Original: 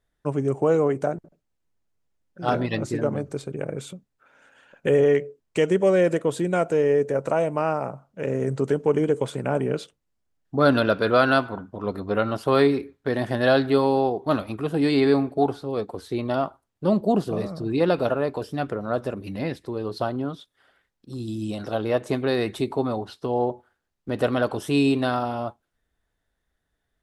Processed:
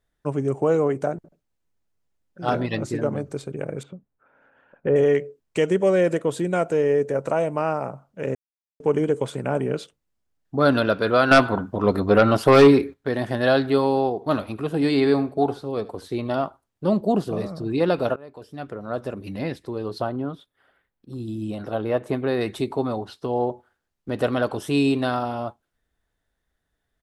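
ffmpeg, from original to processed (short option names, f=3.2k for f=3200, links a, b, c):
-filter_complex "[0:a]asettb=1/sr,asplit=3[a][b][c];[a]atrim=end=3.834[d];[b]atrim=start=3.83:end=4.96,asetpts=PTS-STARTPTS,afade=t=in:d=0.004:c=qsin,afade=t=out:st=1.126:d=0.004:c=qsin,lowpass=1.4k[e];[c]atrim=start=4.956[f];[d][e]acrossfade=d=0.004:c1=hsin:c2=qsin[g];[g][f]acrossfade=d=0.004:c1=qsin:c2=hsin,asettb=1/sr,asplit=3[h][i][j];[h]atrim=end=11.314[k];[i]atrim=start=11.31:end=12.94,asetpts=PTS-STARTPTS,afade=t=in:d=0.004:c=qsin,afade=t=out:st=1.626:d=0.004:c=qsin,aeval=exprs='0.501*sin(PI/2*1.78*val(0)/0.501)':c=same[l];[j]atrim=start=12.936[m];[k][l]acrossfade=d=0.004:c1=hsin:c2=qsin[n];[n][m]acrossfade=d=0.004:c1=qsin:c2=hsin,asplit=3[o][p][q];[o]afade=t=out:st=14.2:d=0.02[r];[p]aecho=1:1:77:0.119,afade=t=in:st=14.2:d=0.02,afade=t=out:st=16.42:d=0.02[s];[q]afade=t=in:st=16.42:d=0.02[t];[r][s][t]amix=inputs=3:normalize=0,asettb=1/sr,asplit=3[u][v][w];[u]atrim=end=20.014[x];[v]atrim=start=20.01:end=22.41,asetpts=PTS-STARTPTS,afade=t=in:d=0.004:c=qsin,afade=t=out:st=2.396:d=0.004:c=qsin,equalizer=f=6k:t=o:w=1.6:g=-10.5[y];[w]atrim=start=22.406[z];[x][y]acrossfade=d=0.004:c1=hsin:c2=qsin[aa];[aa][z]acrossfade=d=0.004:c1=qsin:c2=hsin,asplit=4[ab][ac][ad][ae];[ab]atrim=end=8.35,asetpts=PTS-STARTPTS,afade=t=out:st=8.346:d=0.004:c=hsin[af];[ac]atrim=start=8.35:end=8.8,asetpts=PTS-STARTPTS,volume=0[ag];[ad]atrim=start=8.8:end=18.16,asetpts=PTS-STARTPTS,afade=t=in:d=0.004:c=hsin,afade=t=out:st=9.356:d=0.004:c=hsin:silence=0.0668344[ah];[ae]atrim=start=18.16,asetpts=PTS-STARTPTS,afade=t=in:d=1.13:silence=0.0668344[ai];[af][ag][ah][ai]concat=n=4:v=0:a=1"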